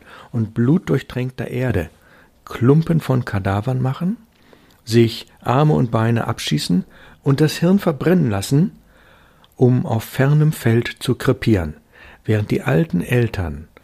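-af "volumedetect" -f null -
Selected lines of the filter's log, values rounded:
mean_volume: -18.5 dB
max_volume: -1.6 dB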